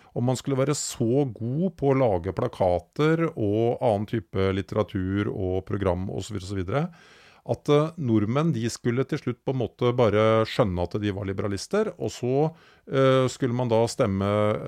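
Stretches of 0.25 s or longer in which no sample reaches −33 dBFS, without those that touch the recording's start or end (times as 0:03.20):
0:06.86–0:07.48
0:12.49–0:12.89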